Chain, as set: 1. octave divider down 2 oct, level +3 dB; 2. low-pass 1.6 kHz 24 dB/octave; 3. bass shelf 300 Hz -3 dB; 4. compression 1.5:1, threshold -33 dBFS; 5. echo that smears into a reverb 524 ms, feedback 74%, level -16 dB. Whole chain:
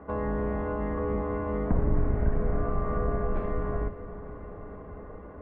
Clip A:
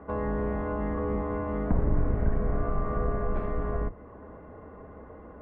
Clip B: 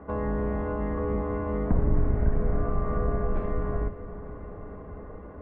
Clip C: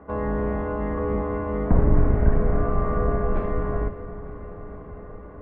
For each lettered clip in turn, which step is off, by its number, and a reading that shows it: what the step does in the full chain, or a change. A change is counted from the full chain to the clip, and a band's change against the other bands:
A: 5, echo-to-direct -12.5 dB to none; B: 3, 125 Hz band +2.0 dB; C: 4, mean gain reduction 3.5 dB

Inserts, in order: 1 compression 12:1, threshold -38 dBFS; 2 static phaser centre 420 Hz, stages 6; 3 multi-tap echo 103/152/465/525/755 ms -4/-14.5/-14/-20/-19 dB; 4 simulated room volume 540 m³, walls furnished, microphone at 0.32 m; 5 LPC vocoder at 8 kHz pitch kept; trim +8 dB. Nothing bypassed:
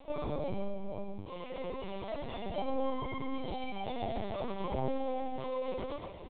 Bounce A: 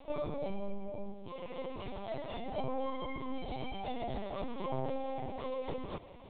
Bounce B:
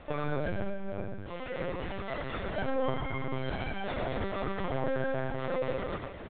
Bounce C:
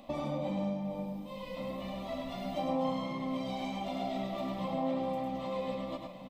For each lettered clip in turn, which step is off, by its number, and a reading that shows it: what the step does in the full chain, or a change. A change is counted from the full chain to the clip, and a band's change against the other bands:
3, loudness change -2.0 LU; 2, 2 kHz band +8.5 dB; 5, 250 Hz band +3.5 dB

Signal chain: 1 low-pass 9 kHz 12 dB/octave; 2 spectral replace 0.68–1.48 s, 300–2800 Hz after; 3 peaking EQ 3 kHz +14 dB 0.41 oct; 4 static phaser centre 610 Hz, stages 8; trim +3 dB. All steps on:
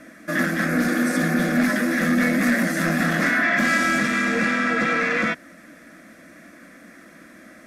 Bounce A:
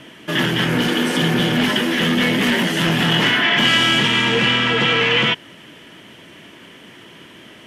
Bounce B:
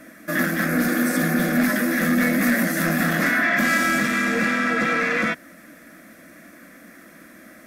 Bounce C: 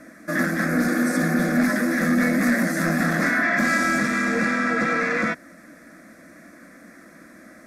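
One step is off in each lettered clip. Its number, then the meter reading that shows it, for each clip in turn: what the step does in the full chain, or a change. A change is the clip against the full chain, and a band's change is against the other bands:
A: 4, 4 kHz band +16.0 dB; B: 1, 8 kHz band +2.5 dB; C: 3, 4 kHz band -4.0 dB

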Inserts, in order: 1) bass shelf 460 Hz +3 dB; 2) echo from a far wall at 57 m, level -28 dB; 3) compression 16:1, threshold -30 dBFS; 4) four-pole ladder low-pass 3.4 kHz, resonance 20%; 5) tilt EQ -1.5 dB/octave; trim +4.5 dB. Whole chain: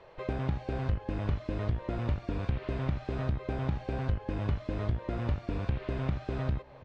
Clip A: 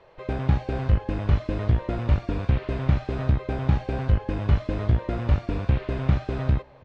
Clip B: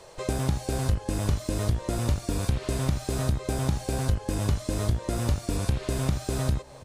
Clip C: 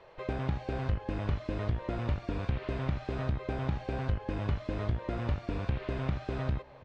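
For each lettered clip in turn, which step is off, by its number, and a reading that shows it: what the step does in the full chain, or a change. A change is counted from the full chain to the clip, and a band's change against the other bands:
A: 3, mean gain reduction 6.0 dB; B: 4, 4 kHz band +7.5 dB; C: 1, 125 Hz band -2.0 dB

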